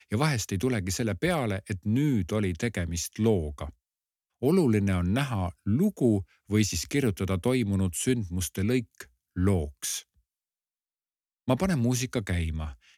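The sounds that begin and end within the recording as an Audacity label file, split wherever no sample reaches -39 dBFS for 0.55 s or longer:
4.420000	10.000000	sound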